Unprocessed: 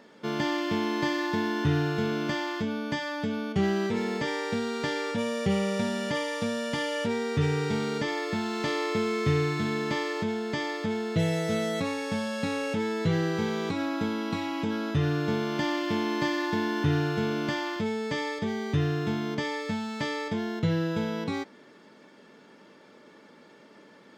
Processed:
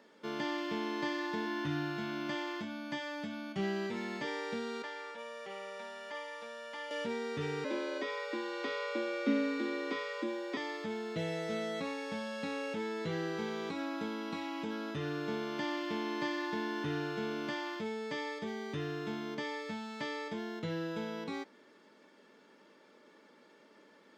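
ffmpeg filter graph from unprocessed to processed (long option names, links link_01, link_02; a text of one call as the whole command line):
ffmpeg -i in.wav -filter_complex "[0:a]asettb=1/sr,asplit=3[link_01][link_02][link_03];[link_01]atrim=end=1.454[link_04];[link_02]atrim=start=1.45:end=4.24,asetpts=PTS-STARTPTS,afade=type=in:duration=0.004:curve=qsin,afade=type=out:start_time=2.786:duration=0.004:curve=qsin,bandreject=frequency=440:width=5.6,asplit=2[link_05][link_06];[link_06]adelay=20,volume=-11dB[link_07];[link_05][link_07]amix=inputs=2:normalize=0,atrim=end_sample=123039[link_08];[link_03]atrim=start=4.236[link_09];[link_04][link_08]acrossfade=duration=0.004:curve1=hsin:curve2=qsin[link_10];[link_10][link_09]acrossfade=duration=0.004:curve1=qsin:curve2=hsin,asettb=1/sr,asplit=3[link_11][link_12][link_13];[link_11]atrim=end=4.824[link_14];[link_12]atrim=start=4.82:end=6.91,asetpts=PTS-STARTPTS,afade=type=in:duration=0.004:curve=qsin,afade=type=out:start_time=2.086:duration=0.004:curve=qsin,highpass=720,highshelf=frequency=2800:gain=-12[link_15];[link_13]atrim=start=6.906[link_16];[link_14][link_15]acrossfade=duration=0.004:curve1=hsin:curve2=qsin[link_17];[link_17][link_16]acrossfade=duration=0.004:curve1=qsin:curve2=hsin,asettb=1/sr,asplit=3[link_18][link_19][link_20];[link_18]atrim=end=7.644[link_21];[link_19]atrim=start=7.64:end=10.57,asetpts=PTS-STARTPTS,afade=type=in:duration=0.004:curve=qsin,afade=type=out:start_time=2.926:duration=0.004:curve=qsin,asubboost=boost=5:cutoff=150,acrossover=split=4600[link_22][link_23];[link_23]acompressor=threshold=-52dB:ratio=4:attack=1:release=60[link_24];[link_22][link_24]amix=inputs=2:normalize=0,afreqshift=130[link_25];[link_20]atrim=start=10.566[link_26];[link_21][link_25]acrossfade=duration=0.004:curve1=hsin:curve2=qsin[link_27];[link_27][link_26]acrossfade=duration=0.004:curve1=qsin:curve2=hsin,highpass=230,bandreject=frequency=720:width=20,acrossover=split=5800[link_28][link_29];[link_29]acompressor=threshold=-55dB:ratio=4:attack=1:release=60[link_30];[link_28][link_30]amix=inputs=2:normalize=0,volume=-7dB" out.wav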